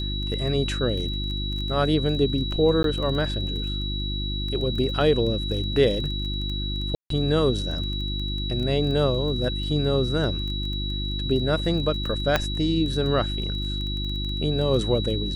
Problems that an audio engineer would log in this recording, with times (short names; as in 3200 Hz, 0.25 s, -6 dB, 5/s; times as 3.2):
crackle 15/s -31 dBFS
hum 50 Hz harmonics 7 -29 dBFS
tone 3900 Hz -31 dBFS
2.83–2.84 gap 12 ms
6.95–7.1 gap 0.153 s
12.36 pop -6 dBFS